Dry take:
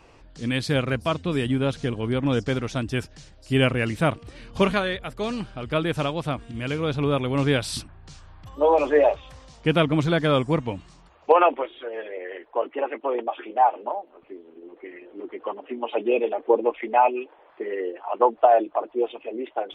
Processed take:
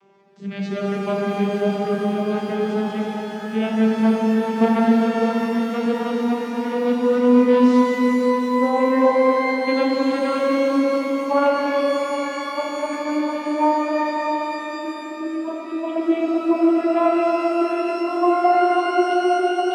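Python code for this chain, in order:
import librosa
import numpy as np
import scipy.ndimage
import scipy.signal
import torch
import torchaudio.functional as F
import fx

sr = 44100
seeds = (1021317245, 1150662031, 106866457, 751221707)

y = fx.vocoder_glide(x, sr, note=55, semitones=11)
y = fx.echo_opening(y, sr, ms=133, hz=200, octaves=1, feedback_pct=70, wet_db=0)
y = fx.rev_shimmer(y, sr, seeds[0], rt60_s=3.3, semitones=12, shimmer_db=-8, drr_db=-1.0)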